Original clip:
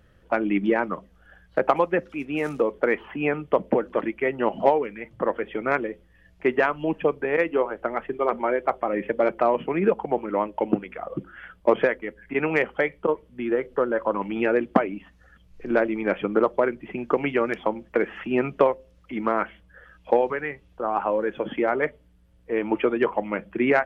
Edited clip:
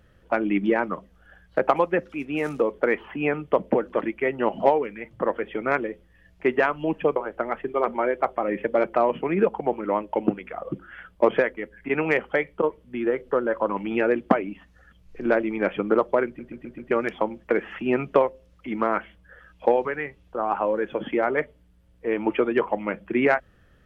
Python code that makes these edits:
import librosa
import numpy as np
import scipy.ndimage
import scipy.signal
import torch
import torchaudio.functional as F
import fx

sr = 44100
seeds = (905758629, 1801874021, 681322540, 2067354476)

y = fx.edit(x, sr, fx.cut(start_s=7.16, length_s=0.45),
    fx.stutter_over(start_s=16.71, slice_s=0.13, count=5), tone=tone)